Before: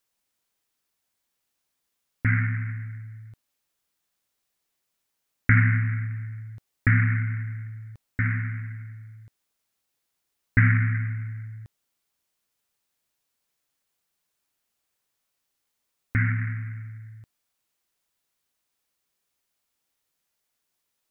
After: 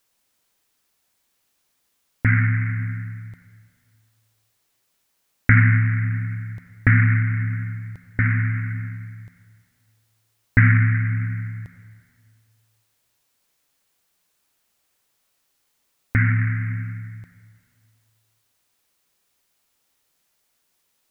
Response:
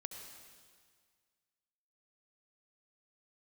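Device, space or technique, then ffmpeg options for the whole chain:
ducked reverb: -filter_complex "[0:a]asplit=3[link_01][link_02][link_03];[1:a]atrim=start_sample=2205[link_04];[link_02][link_04]afir=irnorm=-1:irlink=0[link_05];[link_03]apad=whole_len=930912[link_06];[link_05][link_06]sidechaincompress=threshold=-31dB:ratio=8:attack=16:release=157,volume=3dB[link_07];[link_01][link_07]amix=inputs=2:normalize=0,volume=3dB"

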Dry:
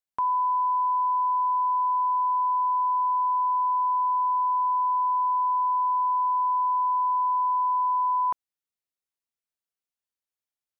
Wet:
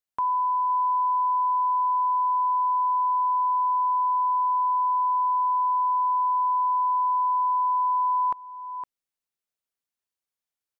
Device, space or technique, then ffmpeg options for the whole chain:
ducked delay: -filter_complex "[0:a]asplit=3[link_01][link_02][link_03];[link_02]adelay=512,volume=-5.5dB[link_04];[link_03]apad=whole_len=498712[link_05];[link_04][link_05]sidechaincompress=threshold=-41dB:ratio=4:attack=16:release=536[link_06];[link_01][link_06]amix=inputs=2:normalize=0"

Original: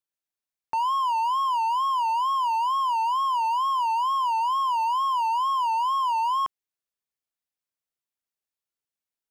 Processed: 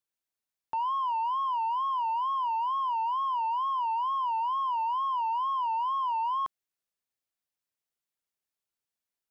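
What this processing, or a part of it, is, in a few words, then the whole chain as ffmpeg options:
saturation between pre-emphasis and de-emphasis: -af "highshelf=frequency=5000:gain=12,asoftclip=type=tanh:threshold=-26dB,highshelf=frequency=5000:gain=-12"

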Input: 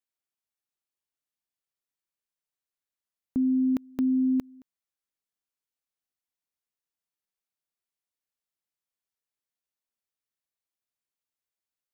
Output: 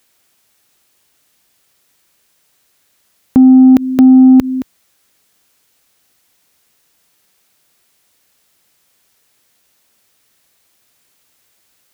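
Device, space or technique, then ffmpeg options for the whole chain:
mastering chain: -af "highpass=48,equalizer=frequency=1000:width_type=o:width=0.77:gain=-2,acompressor=threshold=-29dB:ratio=2,asoftclip=type=tanh:threshold=-23.5dB,alimiter=level_in=34dB:limit=-1dB:release=50:level=0:latency=1,volume=-1dB"

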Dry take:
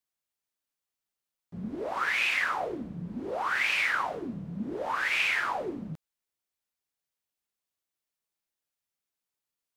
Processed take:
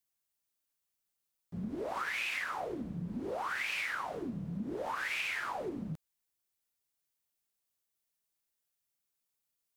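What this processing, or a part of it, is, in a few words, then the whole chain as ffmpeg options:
ASMR close-microphone chain: -af "lowshelf=frequency=180:gain=4,acompressor=threshold=-32dB:ratio=6,highshelf=frequency=6200:gain=8,volume=-2dB"

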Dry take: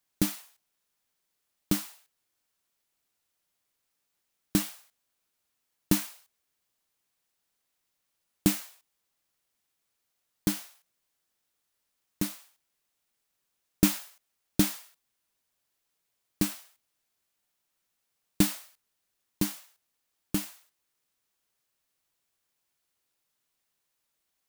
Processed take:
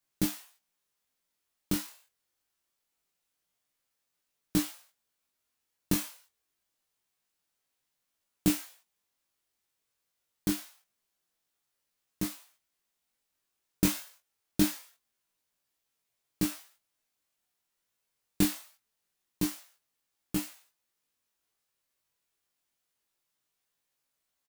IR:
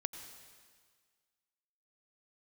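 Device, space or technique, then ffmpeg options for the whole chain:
double-tracked vocal: -filter_complex "[0:a]asplit=2[link_01][link_02];[link_02]adelay=23,volume=-7.5dB[link_03];[link_01][link_03]amix=inputs=2:normalize=0,flanger=delay=15.5:depth=5.6:speed=0.25"

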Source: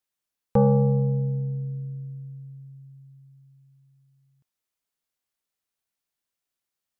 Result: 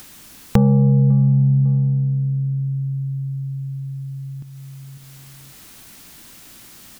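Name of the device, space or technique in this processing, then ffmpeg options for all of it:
upward and downward compression: -af "lowshelf=frequency=360:width_type=q:width=1.5:gain=7,aecho=1:1:550|1100:0.133|0.0333,acompressor=mode=upward:threshold=-23dB:ratio=2.5,acompressor=threshold=-19dB:ratio=6,volume=7.5dB"

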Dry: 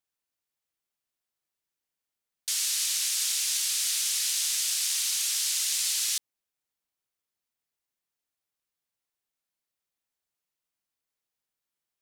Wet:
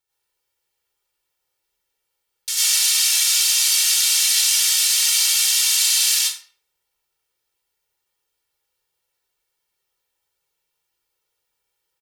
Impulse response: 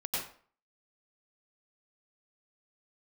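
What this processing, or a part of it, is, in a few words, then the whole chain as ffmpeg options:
microphone above a desk: -filter_complex "[0:a]aecho=1:1:2.2:0.87[link_01];[1:a]atrim=start_sample=2205[link_02];[link_01][link_02]afir=irnorm=-1:irlink=0,volume=5dB"

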